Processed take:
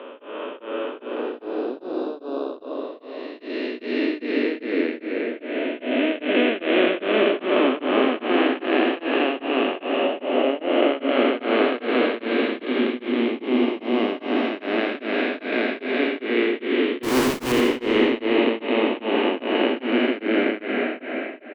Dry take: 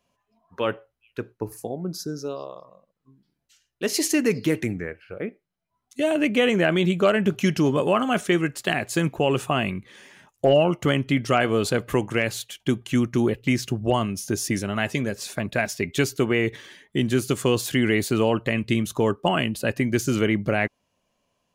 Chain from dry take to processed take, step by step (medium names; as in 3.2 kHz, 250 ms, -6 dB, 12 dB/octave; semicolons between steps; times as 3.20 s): spectral blur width 1050 ms; Chebyshev band-pass 250–3900 Hz, order 5; in parallel at +2 dB: compression, threshold -38 dBFS, peak gain reduction 13 dB; 17.03–17.52 s: on the sum: Schmitt trigger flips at -37 dBFS; delay 84 ms -7.5 dB; reverberation RT60 2.6 s, pre-delay 110 ms, DRR 5.5 dB; tremolo of two beating tones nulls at 2.5 Hz; trim +7.5 dB